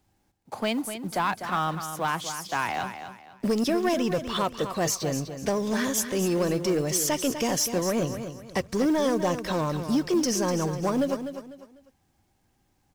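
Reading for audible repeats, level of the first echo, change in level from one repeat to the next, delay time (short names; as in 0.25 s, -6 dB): 3, -9.5 dB, -10.0 dB, 0.249 s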